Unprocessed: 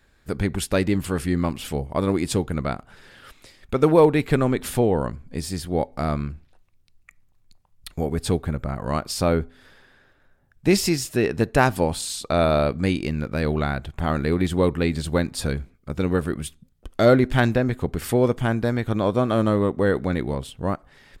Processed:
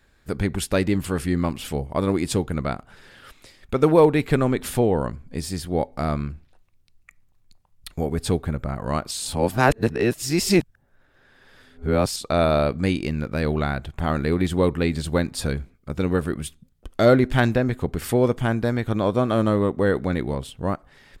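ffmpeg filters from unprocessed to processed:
-filter_complex "[0:a]asplit=3[a][b][c];[a]atrim=end=9.112[d];[b]atrim=start=9.108:end=12.162,asetpts=PTS-STARTPTS,areverse[e];[c]atrim=start=12.158[f];[d][e]acrossfade=d=0.004:c1=hsin:c2=hsin[g];[g][f]acrossfade=d=0.004:c1=hsin:c2=hsin"

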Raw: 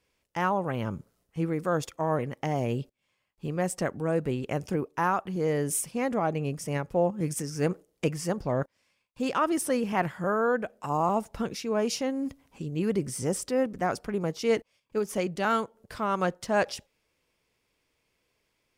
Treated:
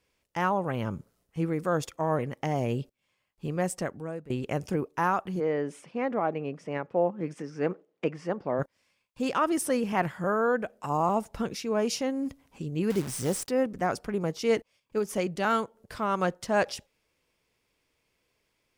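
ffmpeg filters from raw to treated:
-filter_complex "[0:a]asplit=3[a][b][c];[a]afade=t=out:st=5.39:d=0.02[d];[b]highpass=230,lowpass=2.5k,afade=t=in:st=5.39:d=0.02,afade=t=out:st=8.58:d=0.02[e];[c]afade=t=in:st=8.58:d=0.02[f];[d][e][f]amix=inputs=3:normalize=0,asettb=1/sr,asplit=3[g][h][i];[g]atrim=end=12.904[j];[h]atrim=start=12.9:end=13.49,asetpts=PTS-STARTPTS,afade=t=in:d=0.004:c=qsin,afade=t=out:st=0.586:d=0.004:c=qsin,acrusher=bits=7:dc=4:mix=0:aa=0.000001[k];[i]atrim=start=13.486[l];[j][k]acrossfade=d=0.004:c1=hsin:c2=qsin[m];[m][l]acrossfade=d=0.004:c1=qsin:c2=hsin,asplit=2[n][o];[n]atrim=end=4.3,asetpts=PTS-STARTPTS,afade=t=out:st=3.63:d=0.67:silence=0.105925[p];[o]atrim=start=4.3,asetpts=PTS-STARTPTS,afade=t=in:d=0.004:c=hsin:silence=0.105925[q];[p][q]concat=n=2:v=0:a=1"

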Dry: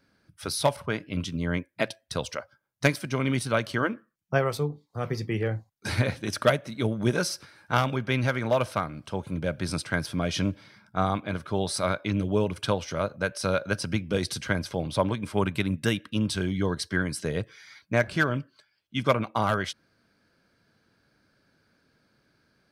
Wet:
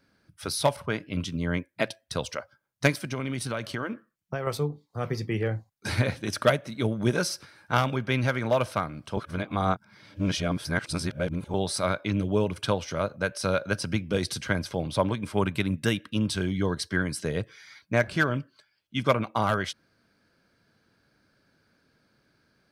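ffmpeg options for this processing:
-filter_complex "[0:a]asettb=1/sr,asplit=3[a][b][c];[a]atrim=end=3.044[d];[b]atrim=start=3.04:end=4.47,asetpts=PTS-STARTPTS,afade=t=in:d=0.004:c=qsin,afade=t=out:st=1.426:d=0.004:c=qsin,acompressor=threshold=-26dB:ratio=6:attack=3.2:release=140:knee=1:detection=peak[e];[c]atrim=start=4.466[f];[d][e]acrossfade=d=0.004:c1=hsin:c2=qsin[g];[g][f]acrossfade=d=0.004:c1=qsin:c2=hsin,asplit=3[h][i][j];[h]atrim=end=9.172[k];[i]atrim=start=9.168:end=11.542,asetpts=PTS-STARTPTS,areverse[l];[j]atrim=start=11.538[m];[k][l]acrossfade=d=0.004:c1=hsin:c2=hsin[n];[n][m]acrossfade=d=0.004:c1=hsin:c2=hsin"

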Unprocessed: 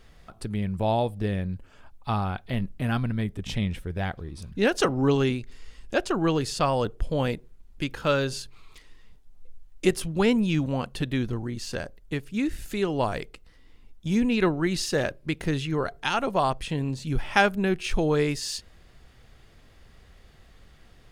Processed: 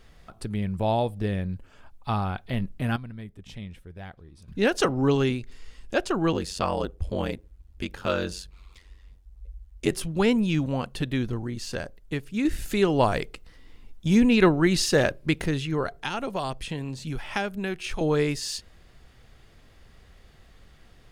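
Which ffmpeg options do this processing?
-filter_complex "[0:a]asettb=1/sr,asplit=3[a][b][c];[a]atrim=end=6.324[d];[b]atrim=start=6.32:end=9.91,asetpts=PTS-STARTPTS,afade=t=in:d=0.004:c=qsin,afade=t=out:st=3.586:d=0.004:c=qsin,aeval=exprs='val(0)*sin(2*PI*46*n/s)':c=same[e];[c]atrim=start=9.906[f];[d][e]acrossfade=d=0.004:c1=hsin:c2=qsin[g];[g][f]acrossfade=d=0.004:c1=qsin:c2=hsin,asettb=1/sr,asplit=3[h][i][j];[h]atrim=end=15.994[k];[i]atrim=start=15.99:end=18.01,asetpts=PTS-STARTPTS,afade=t=in:d=0.004:c=qsin,afade=t=out:st=2.016:d=0.004:c=qsin,acrossover=split=580|1900[l][m][n];[l]acompressor=threshold=-30dB:ratio=4[o];[m]acompressor=threshold=-34dB:ratio=4[p];[n]acompressor=threshold=-33dB:ratio=4[q];[o][p][q]amix=inputs=3:normalize=0[r];[j]atrim=start=18.006[s];[k][r]acrossfade=d=0.004:c1=hsin:c2=qsin[t];[t][s]acrossfade=d=0.004:c1=qsin:c2=hsin,asplit=5[u][v][w][x][y];[u]atrim=end=2.962[z];[v]atrim=start=2.958:end=4.482,asetpts=PTS-STARTPTS,volume=-11.5dB[aa];[w]atrim=start=4.478:end=12.452[ab];[x]atrim=start=12.448:end=15.462,asetpts=PTS-STARTPTS,volume=4.5dB[ac];[y]atrim=start=15.458[ad];[z][aa]acrossfade=d=0.004:c1=hsin:c2=hsin[ae];[ae][ab]acrossfade=d=0.004:c1=hsin:c2=hsin[af];[af][ac]acrossfade=d=0.004:c1=hsin:c2=hsin[ag];[ag][ad]acrossfade=d=0.004:c1=hsin:c2=hsin"

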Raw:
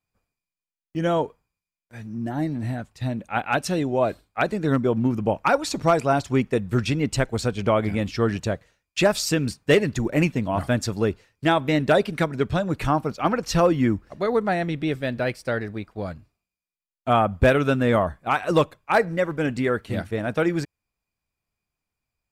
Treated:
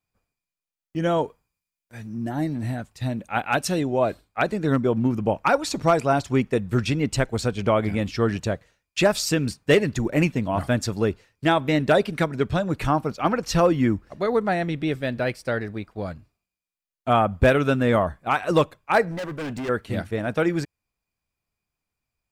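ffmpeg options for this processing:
-filter_complex "[0:a]asettb=1/sr,asplit=3[a][b][c];[a]atrim=end=1.184[d];[b]atrim=start=1.18:end=3.81,asetpts=PTS-STARTPTS,afade=t=in:d=0.004:c=qsin,afade=t=out:st=2.626:d=0.004:c=qsin,highshelf=f=5.9k:g=5.5[e];[c]atrim=start=3.806[f];[d][e]acrossfade=d=0.004:c1=hsin:c2=qsin[g];[g][f]acrossfade=d=0.004:c1=qsin:c2=hsin,asettb=1/sr,asplit=3[h][i][j];[h]atrim=end=19.114[k];[i]atrim=start=19.11:end=19.69,asetpts=PTS-STARTPTS,afade=t=in:d=0.004:c=qsin,afade=t=out:st=0.576:d=0.004:c=qsin,volume=28dB,asoftclip=hard,volume=-28dB[l];[j]atrim=start=19.686[m];[k][l]acrossfade=d=0.004:c1=hsin:c2=qsin[n];[n][m]acrossfade=d=0.004:c1=qsin:c2=hsin"

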